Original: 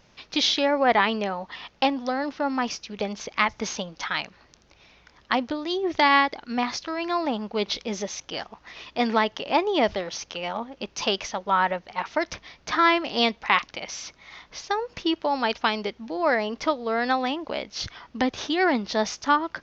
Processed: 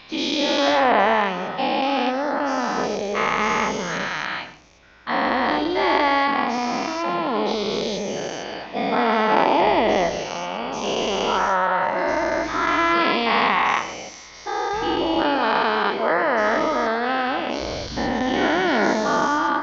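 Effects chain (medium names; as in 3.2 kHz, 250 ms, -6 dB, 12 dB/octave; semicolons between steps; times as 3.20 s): every event in the spectrogram widened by 480 ms; treble shelf 2.4 kHz -9.5 dB; on a send: reverberation RT60 0.25 s, pre-delay 106 ms, DRR 13.5 dB; on the sum: trim -3 dB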